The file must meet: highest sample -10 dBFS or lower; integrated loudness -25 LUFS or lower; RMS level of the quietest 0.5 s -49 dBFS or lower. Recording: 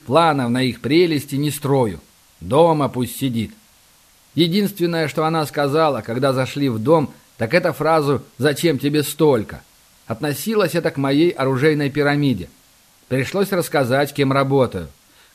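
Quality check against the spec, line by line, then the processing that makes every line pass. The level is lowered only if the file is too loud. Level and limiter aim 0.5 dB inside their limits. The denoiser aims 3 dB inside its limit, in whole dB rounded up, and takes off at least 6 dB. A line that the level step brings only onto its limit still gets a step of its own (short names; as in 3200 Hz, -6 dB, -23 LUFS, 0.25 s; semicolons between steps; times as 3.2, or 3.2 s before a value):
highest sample -1.5 dBFS: fail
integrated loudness -18.5 LUFS: fail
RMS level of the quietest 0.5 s -53 dBFS: OK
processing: gain -7 dB; limiter -10.5 dBFS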